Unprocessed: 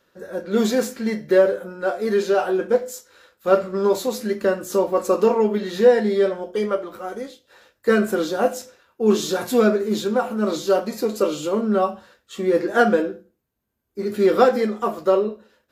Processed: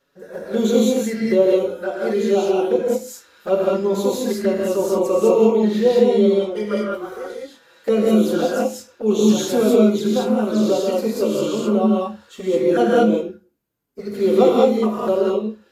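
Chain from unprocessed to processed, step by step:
flanger swept by the level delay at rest 7.2 ms, full sweep at −17.5 dBFS
reverb whose tail is shaped and stops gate 230 ms rising, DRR −3.5 dB
level −1 dB

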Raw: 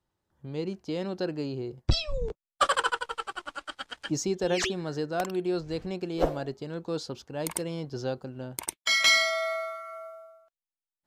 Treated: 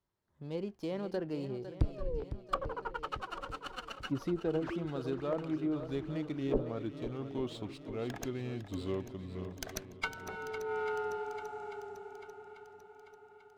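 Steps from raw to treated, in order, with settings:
gliding playback speed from 108% → 55%
treble cut that deepens with the level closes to 490 Hz, closed at −21.5 dBFS
on a send: feedback echo with a long and a short gap by turns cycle 842 ms, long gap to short 1.5 to 1, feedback 49%, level −11.5 dB
on the sum: windowed peak hold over 3 samples
level −5 dB

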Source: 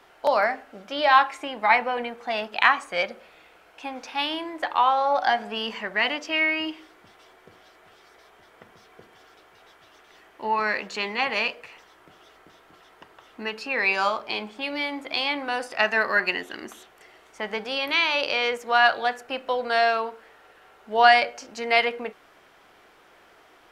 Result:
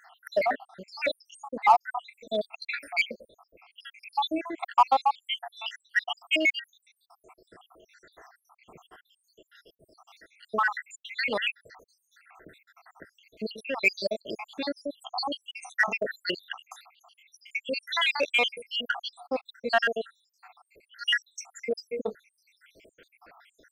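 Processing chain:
time-frequency cells dropped at random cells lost 85%
in parallel at −5.5 dB: gain into a clipping stage and back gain 25 dB
on the sum: level +1 dB

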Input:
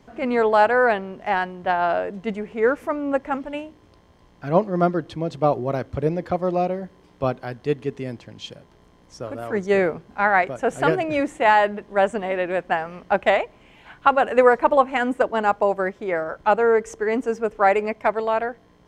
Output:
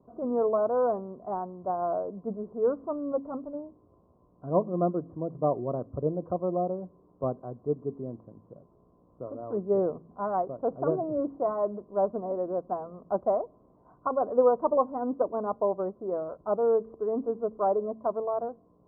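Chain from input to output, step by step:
Butterworth low-pass 1,100 Hz 48 dB per octave
notch comb filter 840 Hz
hum removal 55.35 Hz, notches 5
level −6 dB

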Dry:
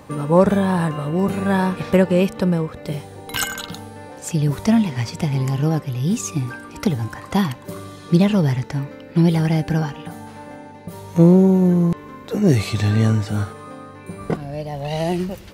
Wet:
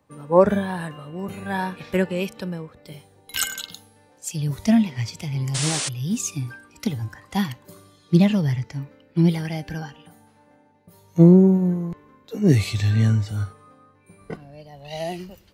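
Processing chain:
noise reduction from a noise print of the clip's start 7 dB
sound drawn into the spectrogram noise, 0:05.54–0:05.89, 250–9,800 Hz −26 dBFS
multiband upward and downward expander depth 40%
level −3 dB

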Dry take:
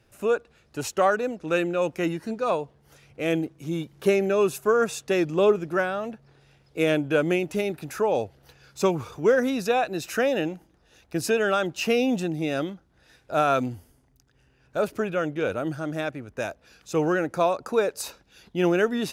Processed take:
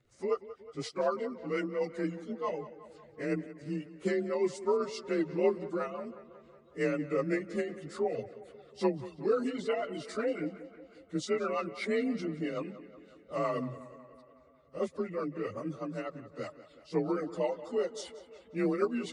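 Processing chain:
partials spread apart or drawn together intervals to 90%
reverb reduction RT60 0.65 s
rotating-speaker cabinet horn 8 Hz
on a send: tape delay 182 ms, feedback 67%, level −14.5 dB, low-pass 4,300 Hz
on the sum: level −4.5 dB

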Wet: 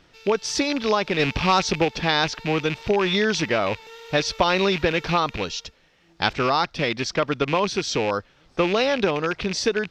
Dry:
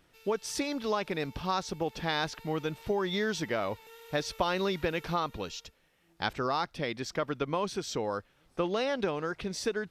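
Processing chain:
loose part that buzzes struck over −42 dBFS, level −28 dBFS
0:01.19–0:01.85: leveller curve on the samples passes 1
high shelf with overshoot 7,800 Hz −13 dB, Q 1.5
level +9 dB

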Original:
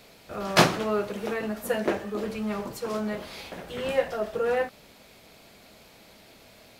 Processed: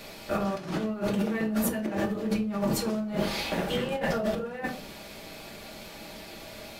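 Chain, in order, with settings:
dynamic equaliser 180 Hz, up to +8 dB, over −44 dBFS, Q 0.89
compressor whose output falls as the input rises −33 dBFS, ratio −1
convolution reverb RT60 0.35 s, pre-delay 3 ms, DRR 2 dB

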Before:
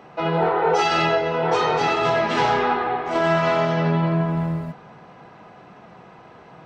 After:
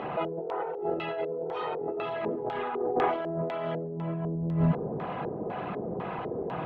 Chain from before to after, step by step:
spectral envelope exaggerated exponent 1.5
auto-filter low-pass square 2 Hz 430–3,200 Hz
compressor whose output falls as the input rises −31 dBFS, ratio −1

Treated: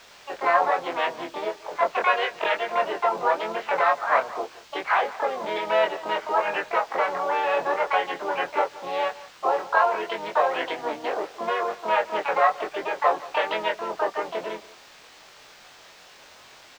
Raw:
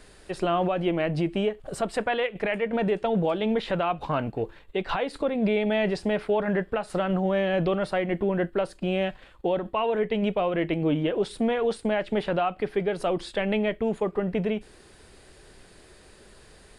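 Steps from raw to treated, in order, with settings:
adaptive Wiener filter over 15 samples
Chebyshev band-pass filter 710–2,000 Hz, order 2
harmonic and percussive parts rebalanced percussive +3 dB
pitch-shifted copies added −4 semitones −8 dB, +7 semitones −1 dB
background noise blue −41 dBFS
in parallel at −11.5 dB: bit reduction 6 bits
on the sum: high-frequency loss of the air 180 metres
double-tracking delay 23 ms −3.5 dB
single-tap delay 175 ms −19 dB
level +2 dB

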